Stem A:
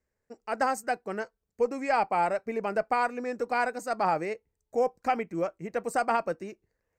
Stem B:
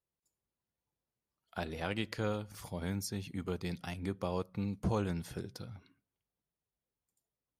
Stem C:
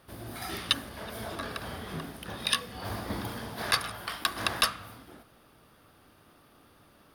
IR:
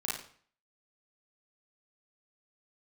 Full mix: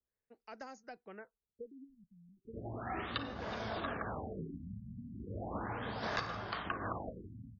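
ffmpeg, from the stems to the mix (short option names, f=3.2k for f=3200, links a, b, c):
-filter_complex "[0:a]highshelf=f=3.2k:g=11,acrossover=split=420|1800[a][b][c];[a]acompressor=threshold=-36dB:ratio=4[d];[b]acompressor=threshold=-36dB:ratio=4[e];[c]acompressor=threshold=-43dB:ratio=4[f];[d][e][f]amix=inputs=3:normalize=0,volume=-14.5dB[g];[1:a]tremolo=f=0.74:d=0.72,adelay=1800,volume=-9dB[h];[2:a]adelay=2450,volume=-1.5dB,asplit=2[i][j];[j]volume=-11dB[k];[3:a]atrim=start_sample=2205[l];[k][l]afir=irnorm=-1:irlink=0[m];[g][h][i][m]amix=inputs=4:normalize=0,acrossover=split=600|1700[n][o][p];[n]acompressor=threshold=-41dB:ratio=4[q];[o]acompressor=threshold=-38dB:ratio=4[r];[p]acompressor=threshold=-46dB:ratio=4[s];[q][r][s]amix=inputs=3:normalize=0,afftfilt=real='re*lt(b*sr/1024,240*pow(7100/240,0.5+0.5*sin(2*PI*0.36*pts/sr)))':imag='im*lt(b*sr/1024,240*pow(7100/240,0.5+0.5*sin(2*PI*0.36*pts/sr)))':win_size=1024:overlap=0.75"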